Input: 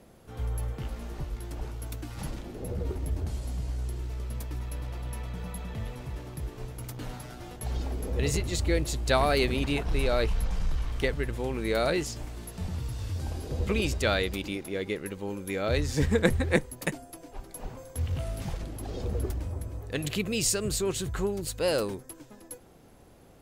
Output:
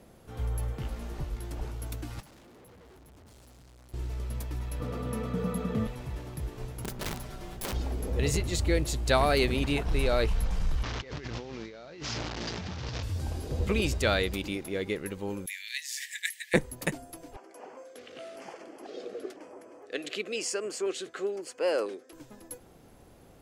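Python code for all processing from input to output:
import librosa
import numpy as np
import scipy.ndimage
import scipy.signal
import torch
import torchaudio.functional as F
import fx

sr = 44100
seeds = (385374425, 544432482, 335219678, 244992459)

y = fx.chain(x, sr, fx.highpass(hz=200.0, slope=6),
    fx.tube_stage(drive_db=53.0, bias=0.7), at=(2.2, 3.94))
y = fx.chain(y, sr, fx.highpass(hz=74.0, slope=12),
    fx.small_body(hz=(230.0, 450.0, 1200.0), ring_ms=35, db=15), at=(4.8, 5.87))
y = fx.chain(y, sr, fx.lower_of_two(delay_ms=5.2),
    fx.low_shelf(hz=100.0, db=10.0),
    fx.overflow_wrap(gain_db=29.5), at=(6.84, 7.73))
y = fx.chain(y, sr, fx.delta_mod(bps=32000, step_db=-33.0),
    fx.highpass(hz=94.0, slope=12),
    fx.over_compress(threshold_db=-39.0, ratio=-1.0), at=(10.83, 13.03))
y = fx.chain(y, sr, fx.cheby1_highpass(hz=1700.0, order=8),
    fx.high_shelf(hz=9400.0, db=8.0), at=(15.46, 16.54))
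y = fx.chain(y, sr, fx.highpass(hz=320.0, slope=24),
    fx.filter_lfo_notch(shape='square', hz=1.0, low_hz=930.0, high_hz=3800.0, q=2.0),
    fx.air_absorb(metres=78.0), at=(17.36, 22.13))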